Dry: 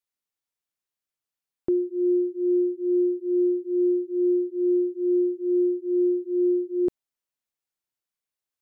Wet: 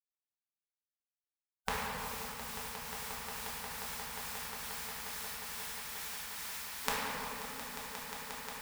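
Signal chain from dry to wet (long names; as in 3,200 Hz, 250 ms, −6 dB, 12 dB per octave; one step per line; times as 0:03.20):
compressing power law on the bin magnitudes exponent 0.61
high-pass filter 75 Hz 12 dB per octave
gate on every frequency bin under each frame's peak −20 dB weak
parametric band 120 Hz −8 dB 0.66 octaves
on a send: echo that builds up and dies away 178 ms, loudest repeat 8, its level −13 dB
on the sum: rectangular room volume 190 cubic metres, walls hard, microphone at 1.1 metres
level +4.5 dB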